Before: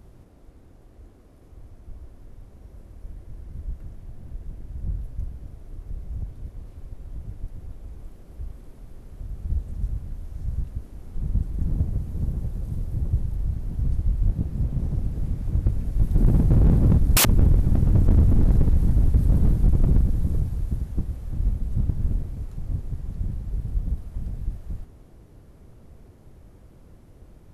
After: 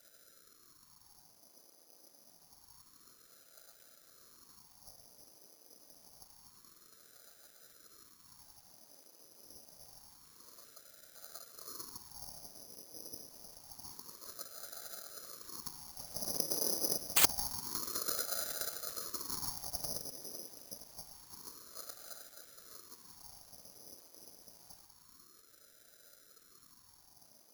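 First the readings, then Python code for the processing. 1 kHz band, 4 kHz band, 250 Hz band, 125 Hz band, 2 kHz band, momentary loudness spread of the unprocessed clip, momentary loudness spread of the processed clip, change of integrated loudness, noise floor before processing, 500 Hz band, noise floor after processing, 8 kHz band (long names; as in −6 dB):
−7.0 dB, −4.5 dB, −25.5 dB, −38.5 dB, −9.0 dB, 22 LU, 23 LU, −13.0 dB, −50 dBFS, −12.0 dB, −64 dBFS, −3.5 dB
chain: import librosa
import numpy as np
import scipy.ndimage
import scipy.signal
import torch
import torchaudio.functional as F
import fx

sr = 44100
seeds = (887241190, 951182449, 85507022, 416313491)

y = fx.whisperise(x, sr, seeds[0])
y = scipy.signal.sosfilt(scipy.signal.cheby1(3, 1.0, [410.0, 2800.0], 'bandpass', fs=sr, output='sos'), y)
y = (np.kron(y[::8], np.eye(8)[0]) * 8)[:len(y)]
y = fx.ring_lfo(y, sr, carrier_hz=550.0, swing_pct=85, hz=0.27)
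y = y * 10.0 ** (-6.5 / 20.0)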